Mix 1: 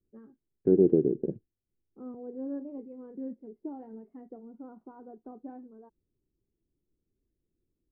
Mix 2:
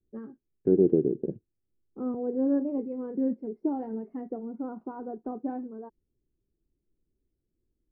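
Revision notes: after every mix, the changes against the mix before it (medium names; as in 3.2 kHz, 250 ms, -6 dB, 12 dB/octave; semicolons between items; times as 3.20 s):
first voice +10.5 dB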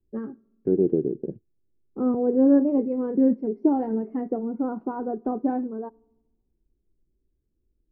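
first voice +7.5 dB; reverb: on, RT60 1.0 s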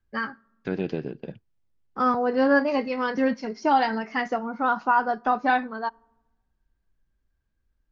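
master: remove resonant low-pass 370 Hz, resonance Q 3.7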